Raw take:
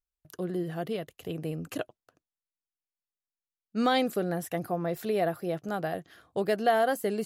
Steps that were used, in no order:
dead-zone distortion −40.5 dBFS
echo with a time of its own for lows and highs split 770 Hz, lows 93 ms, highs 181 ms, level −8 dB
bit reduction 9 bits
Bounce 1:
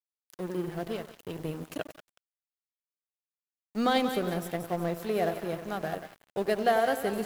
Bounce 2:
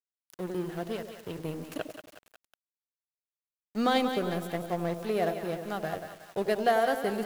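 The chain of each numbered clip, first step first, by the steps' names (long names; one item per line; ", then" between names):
echo with a time of its own for lows and highs, then bit reduction, then dead-zone distortion
dead-zone distortion, then echo with a time of its own for lows and highs, then bit reduction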